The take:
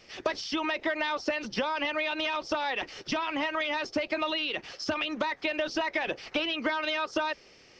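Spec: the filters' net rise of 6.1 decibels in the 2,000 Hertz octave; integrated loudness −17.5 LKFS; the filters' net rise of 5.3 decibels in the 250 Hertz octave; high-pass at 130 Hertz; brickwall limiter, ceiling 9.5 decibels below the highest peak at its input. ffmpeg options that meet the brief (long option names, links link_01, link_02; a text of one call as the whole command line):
ffmpeg -i in.wav -af "highpass=130,equalizer=frequency=250:width_type=o:gain=7,equalizer=frequency=2000:width_type=o:gain=7.5,volume=11.5dB,alimiter=limit=-9dB:level=0:latency=1" out.wav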